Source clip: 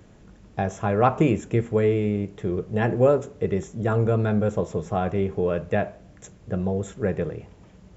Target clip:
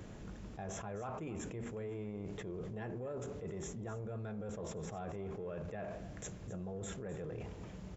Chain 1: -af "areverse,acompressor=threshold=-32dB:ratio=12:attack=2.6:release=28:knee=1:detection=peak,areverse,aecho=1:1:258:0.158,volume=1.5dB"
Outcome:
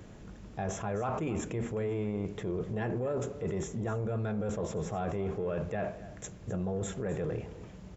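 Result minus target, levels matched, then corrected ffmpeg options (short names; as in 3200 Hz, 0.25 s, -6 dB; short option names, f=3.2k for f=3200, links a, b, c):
compressor: peak gain reduction -9.5 dB
-af "areverse,acompressor=threshold=-42.5dB:ratio=12:attack=2.6:release=28:knee=1:detection=peak,areverse,aecho=1:1:258:0.158,volume=1.5dB"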